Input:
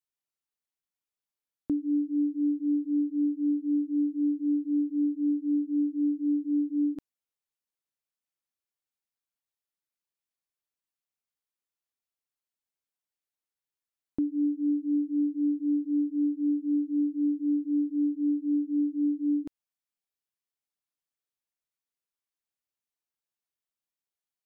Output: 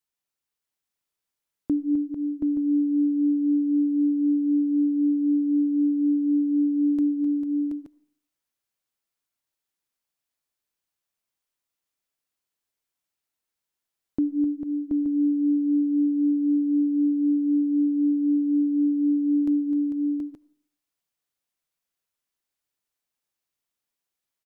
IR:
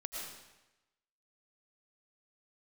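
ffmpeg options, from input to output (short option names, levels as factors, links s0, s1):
-filter_complex "[0:a]aecho=1:1:257|447|724|727|868|875:0.316|0.376|0.141|0.562|0.1|0.282,asplit=2[s0][s1];[1:a]atrim=start_sample=2205,asetrate=70560,aresample=44100[s2];[s1][s2]afir=irnorm=-1:irlink=0,volume=0.211[s3];[s0][s3]amix=inputs=2:normalize=0,volume=1.5"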